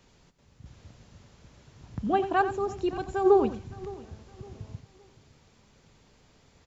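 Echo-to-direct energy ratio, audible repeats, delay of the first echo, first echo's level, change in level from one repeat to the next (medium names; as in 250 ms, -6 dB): -11.5 dB, 4, 89 ms, -12.0 dB, no regular repeats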